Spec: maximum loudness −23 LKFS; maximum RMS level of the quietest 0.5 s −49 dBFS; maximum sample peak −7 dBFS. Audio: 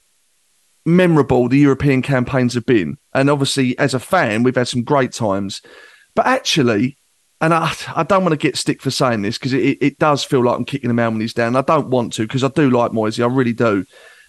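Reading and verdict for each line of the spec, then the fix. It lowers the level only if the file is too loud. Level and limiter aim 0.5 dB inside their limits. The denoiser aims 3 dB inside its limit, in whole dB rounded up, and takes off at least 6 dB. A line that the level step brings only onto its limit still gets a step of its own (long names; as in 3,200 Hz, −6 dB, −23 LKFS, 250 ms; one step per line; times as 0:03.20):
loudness −16.5 LKFS: out of spec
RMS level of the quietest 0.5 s −60 dBFS: in spec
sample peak −3.0 dBFS: out of spec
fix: level −7 dB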